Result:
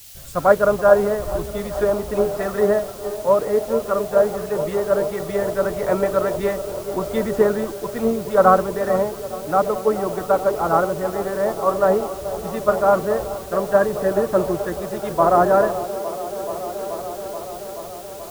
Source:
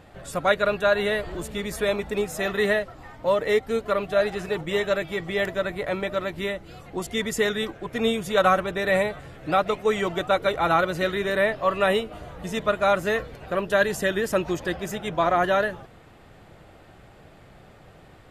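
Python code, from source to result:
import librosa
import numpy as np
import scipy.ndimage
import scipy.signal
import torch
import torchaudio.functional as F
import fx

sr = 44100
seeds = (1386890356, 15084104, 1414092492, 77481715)

p1 = fx.env_lowpass_down(x, sr, base_hz=1100.0, full_db=-20.5)
p2 = fx.high_shelf_res(p1, sr, hz=1800.0, db=-9.0, q=1.5)
p3 = p2 + fx.echo_wet_bandpass(p2, sr, ms=430, feedback_pct=84, hz=520.0, wet_db=-9.0, dry=0)
p4 = fx.rider(p3, sr, range_db=4, speed_s=2.0)
p5 = fx.quant_dither(p4, sr, seeds[0], bits=6, dither='triangular')
p6 = p4 + F.gain(torch.from_numpy(p5), -5.0).numpy()
y = fx.band_widen(p6, sr, depth_pct=70)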